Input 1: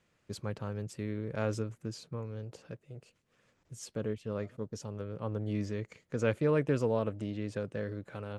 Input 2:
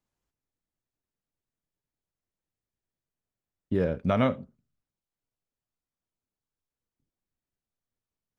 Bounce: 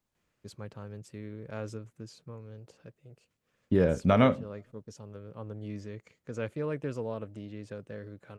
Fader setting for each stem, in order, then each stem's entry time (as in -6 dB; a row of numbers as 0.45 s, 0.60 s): -5.5 dB, +2.0 dB; 0.15 s, 0.00 s